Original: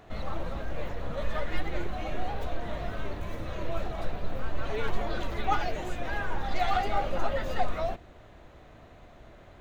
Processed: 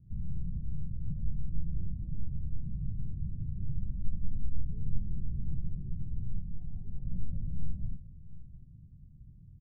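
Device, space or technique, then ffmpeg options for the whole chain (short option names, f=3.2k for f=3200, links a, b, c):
the neighbour's flat through the wall: -filter_complex "[0:a]asettb=1/sr,asplit=3[a][b][c];[a]atrim=end=3.894[d];[b]atrim=start=3.89:end=4.65,asetpts=PTS-STARTPTS,afade=t=in:d=0.004:c=qsin,afade=t=out:st=0.756:d=0.004:c=qsin,aecho=1:1:3.7:0.5,atrim=end_sample=33516[e];[c]atrim=start=4.646[f];[d][e]acrossfade=d=0.004:c1=hsin:c2=qsin[g];[g][f]acrossfade=d=0.004:c1=qsin:c2=hsin,asettb=1/sr,asplit=3[h][i][j];[h]atrim=end=6.394[k];[i]atrim=start=6.39:end=7.05,asetpts=PTS-STARTPTS,afade=t=in:d=0.004:c=qsin,afade=t=out:st=0.656:d=0.004:c=qsin,lowshelf=f=480:g=-5[l];[j]atrim=start=7.046[m];[k][l]acrossfade=d=0.004:c1=hsin:c2=qsin[n];[n][m]acrossfade=d=0.004:c1=qsin:c2=hsin,lowpass=f=150:w=0.5412,lowpass=f=150:w=1.3066,lowshelf=f=110:g=-7,equalizer=f=160:t=o:w=0.88:g=6,aecho=1:1:702:0.141,volume=5.5dB"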